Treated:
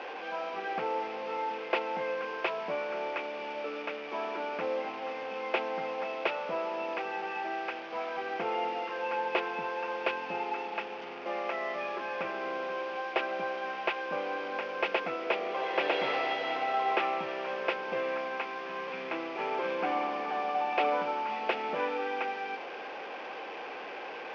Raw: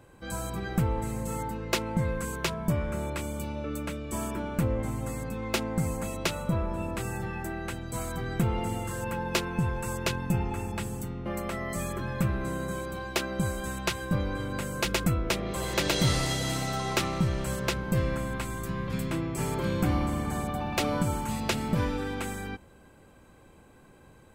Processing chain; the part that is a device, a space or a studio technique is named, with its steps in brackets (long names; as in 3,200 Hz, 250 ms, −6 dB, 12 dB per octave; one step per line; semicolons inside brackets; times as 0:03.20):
digital answering machine (band-pass filter 310–3,400 Hz; linear delta modulator 32 kbit/s, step −36.5 dBFS; loudspeaker in its box 390–4,300 Hz, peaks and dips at 460 Hz +5 dB, 770 Hz +8 dB, 2,500 Hz +7 dB, 4,000 Hz −9 dB)